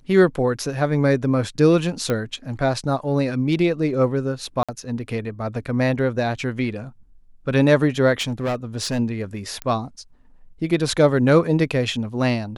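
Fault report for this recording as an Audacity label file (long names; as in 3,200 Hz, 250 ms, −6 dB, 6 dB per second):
2.100000	2.100000	click −10 dBFS
4.630000	4.690000	drop-out 56 ms
8.200000	9.000000	clipping −19.5 dBFS
9.620000	9.620000	click −12 dBFS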